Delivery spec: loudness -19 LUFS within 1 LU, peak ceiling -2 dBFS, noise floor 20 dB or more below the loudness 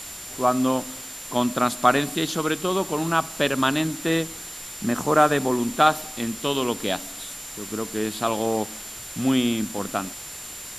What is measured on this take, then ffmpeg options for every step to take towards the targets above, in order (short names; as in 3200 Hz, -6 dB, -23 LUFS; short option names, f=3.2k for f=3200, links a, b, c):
steady tone 7200 Hz; tone level -39 dBFS; noise floor -38 dBFS; noise floor target -44 dBFS; loudness -24.0 LUFS; peak -2.5 dBFS; loudness target -19.0 LUFS
-> -af "bandreject=f=7.2k:w=30"
-af "afftdn=nr=6:nf=-38"
-af "volume=5dB,alimiter=limit=-2dB:level=0:latency=1"